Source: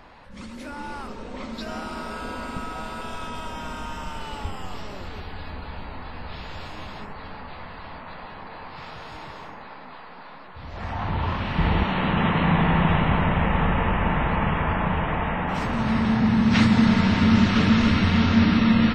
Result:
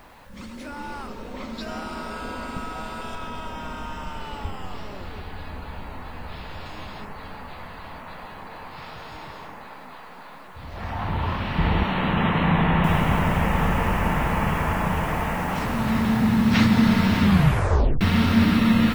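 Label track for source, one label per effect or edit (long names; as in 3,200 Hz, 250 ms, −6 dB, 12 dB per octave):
3.150000	6.660000	high-shelf EQ 5,700 Hz −8 dB
12.840000	12.840000	noise floor change −64 dB −46 dB
17.220000	17.220000	tape stop 0.79 s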